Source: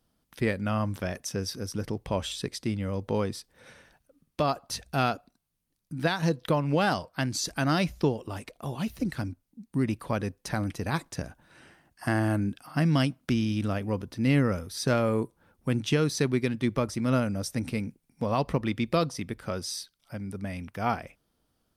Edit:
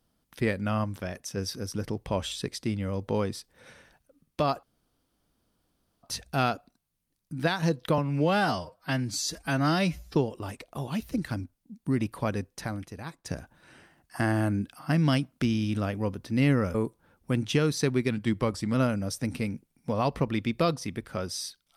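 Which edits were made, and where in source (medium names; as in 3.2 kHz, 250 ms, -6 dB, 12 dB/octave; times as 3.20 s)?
0.84–1.37 s: gain -3 dB
4.63 s: insert room tone 1.40 s
6.58–8.03 s: stretch 1.5×
10.34–11.13 s: fade out quadratic, to -12 dB
14.62–15.12 s: delete
16.48–17.07 s: speed 93%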